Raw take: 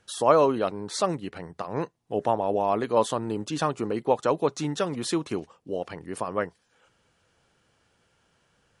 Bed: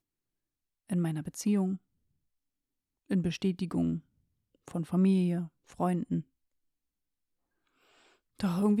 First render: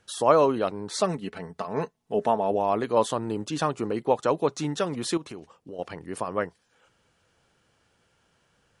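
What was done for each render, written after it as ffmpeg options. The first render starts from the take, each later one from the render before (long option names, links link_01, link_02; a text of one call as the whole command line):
ffmpeg -i in.wav -filter_complex "[0:a]asettb=1/sr,asplit=3[link_01][link_02][link_03];[link_01]atrim=end=1.014[link_04];[link_02]atrim=start=1.01:end=2.51,asetpts=PTS-STARTPTS,afade=type=in:duration=0.004:curve=qsin,afade=type=out:start_time=1.496:duration=0.004:curve=qsin,aecho=1:1:4.6:0.55,atrim=end_sample=66150[link_05];[link_03]atrim=start=2.506[link_06];[link_04][link_05]acrossfade=duration=0.004:curve1=hsin:curve2=qsin[link_07];[link_07][link_06]acrossfade=duration=0.004:curve1=qsin:curve2=hsin,asettb=1/sr,asplit=3[link_08][link_09][link_10];[link_08]atrim=end=5.174[link_11];[link_09]atrim=start=5.17:end=5.79,asetpts=PTS-STARTPTS,afade=type=in:duration=0.004:curve=qsin,afade=type=out:start_time=0.616:duration=0.004:curve=qsin,acompressor=threshold=-38dB:ratio=3:attack=3.2:release=140:knee=1:detection=peak[link_12];[link_10]atrim=start=5.786[link_13];[link_11][link_12]acrossfade=duration=0.004:curve1=hsin:curve2=qsin[link_14];[link_14][link_13]acrossfade=duration=0.004:curve1=qsin:curve2=hsin" out.wav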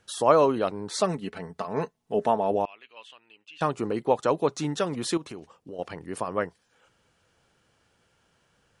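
ffmpeg -i in.wav -filter_complex "[0:a]asettb=1/sr,asplit=3[link_01][link_02][link_03];[link_01]atrim=end=2.654[link_04];[link_02]atrim=start=2.65:end=3.61,asetpts=PTS-STARTPTS,afade=type=in:duration=0.004:curve=qsin,afade=type=out:start_time=0.956:duration=0.004:curve=qsin,bandpass=frequency=2700:width_type=q:width=7.1[link_05];[link_03]atrim=start=3.606[link_06];[link_04][link_05]acrossfade=duration=0.004:curve1=hsin:curve2=qsin[link_07];[link_07][link_06]acrossfade=duration=0.004:curve1=qsin:curve2=hsin" out.wav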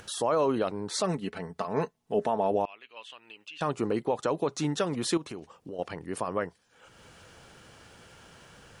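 ffmpeg -i in.wav -af "alimiter=limit=-16.5dB:level=0:latency=1:release=64,acompressor=mode=upward:threshold=-39dB:ratio=2.5" out.wav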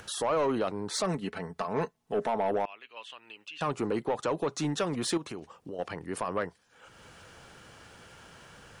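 ffmpeg -i in.wav -filter_complex "[0:a]acrossover=split=490|1700[link_01][link_02][link_03];[link_02]crystalizer=i=5.5:c=0[link_04];[link_01][link_04][link_03]amix=inputs=3:normalize=0,asoftclip=type=tanh:threshold=-21dB" out.wav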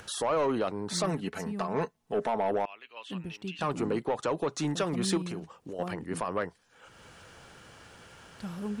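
ffmpeg -i in.wav -i bed.wav -filter_complex "[1:a]volume=-9dB[link_01];[0:a][link_01]amix=inputs=2:normalize=0" out.wav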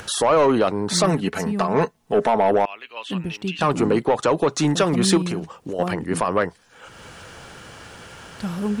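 ffmpeg -i in.wav -af "volume=11dB" out.wav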